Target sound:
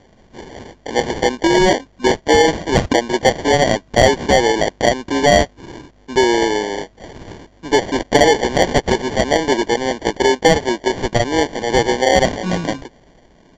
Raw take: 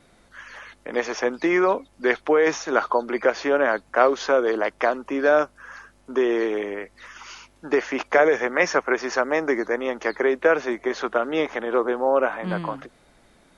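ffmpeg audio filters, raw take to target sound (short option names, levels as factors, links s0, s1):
-af "acrusher=samples=34:mix=1:aa=0.000001,aresample=16000,aresample=44100,acontrast=62,volume=1.12"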